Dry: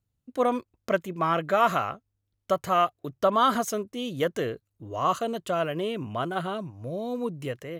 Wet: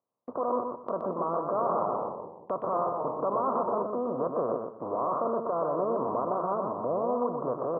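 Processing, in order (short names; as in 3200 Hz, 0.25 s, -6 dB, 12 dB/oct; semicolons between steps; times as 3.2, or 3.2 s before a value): per-bin compression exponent 0.4; elliptic low-pass 1100 Hz, stop band 50 dB; gate -39 dBFS, range -39 dB; HPF 120 Hz; low shelf 320 Hz -7 dB; de-hum 215.6 Hz, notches 27; limiter -18.5 dBFS, peak gain reduction 9 dB; feedback echo 0.123 s, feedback 23%, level -5 dB; 1.43–3.83 echoes that change speed 95 ms, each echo -2 st, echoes 2, each echo -6 dB; gain -2.5 dB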